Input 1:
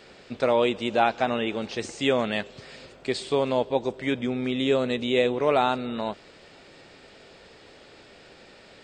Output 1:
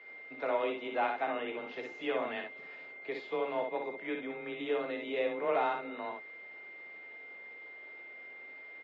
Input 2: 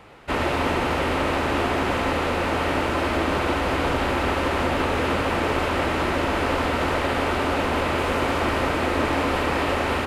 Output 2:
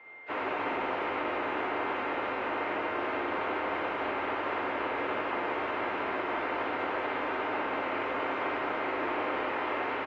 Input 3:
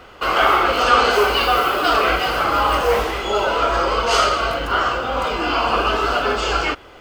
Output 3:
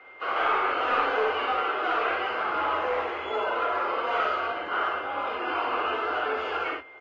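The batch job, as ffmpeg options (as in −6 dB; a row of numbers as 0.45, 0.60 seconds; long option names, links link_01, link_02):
-filter_complex "[0:a]highshelf=frequency=6800:gain=-2.5,bandreject=frequency=530:width=12,afreqshift=23,acrossover=split=120|910|3500[link_01][link_02][link_03][link_04];[link_01]alimiter=level_in=6.5dB:limit=-24dB:level=0:latency=1,volume=-6.5dB[link_05];[link_04]aeval=exprs='0.0299*(abs(mod(val(0)/0.0299+3,4)-2)-1)':channel_layout=same[link_06];[link_05][link_02][link_03][link_06]amix=inputs=4:normalize=0,aeval=exprs='val(0)+0.01*sin(2*PI*2100*n/s)':channel_layout=same,aeval=exprs='clip(val(0),-1,0.178)':channel_layout=same,acrossover=split=300 2900:gain=0.0891 1 0.0708[link_07][link_08][link_09];[link_07][link_08][link_09]amix=inputs=3:normalize=0,aecho=1:1:23|60|71:0.178|0.562|0.178,volume=-9dB" -ar 32000 -c:a aac -b:a 24k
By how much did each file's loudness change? 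−11.5, −9.0, −9.5 LU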